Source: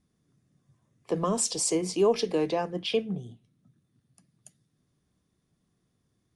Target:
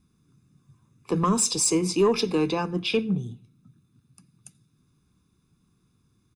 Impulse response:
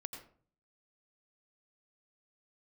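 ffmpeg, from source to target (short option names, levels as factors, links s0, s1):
-filter_complex "[0:a]aecho=1:1:0.8:0.73,asoftclip=type=tanh:threshold=0.178,asplit=2[s0][s1];[1:a]atrim=start_sample=2205[s2];[s1][s2]afir=irnorm=-1:irlink=0,volume=0.178[s3];[s0][s3]amix=inputs=2:normalize=0,volume=1.41"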